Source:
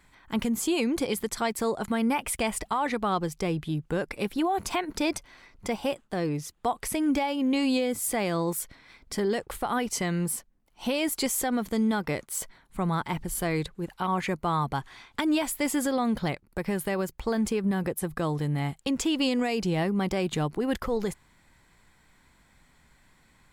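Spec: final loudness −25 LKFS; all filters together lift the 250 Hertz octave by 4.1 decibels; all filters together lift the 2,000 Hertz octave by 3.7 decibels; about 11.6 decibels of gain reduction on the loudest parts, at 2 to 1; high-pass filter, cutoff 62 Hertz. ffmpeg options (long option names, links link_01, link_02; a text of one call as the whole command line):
ffmpeg -i in.wav -af "highpass=62,equalizer=frequency=250:width_type=o:gain=5,equalizer=frequency=2000:width_type=o:gain=4.5,acompressor=threshold=-40dB:ratio=2,volume=11dB" out.wav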